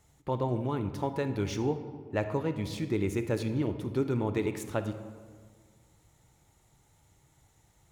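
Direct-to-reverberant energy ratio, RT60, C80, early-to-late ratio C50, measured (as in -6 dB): 9.0 dB, 1.7 s, 11.5 dB, 9.5 dB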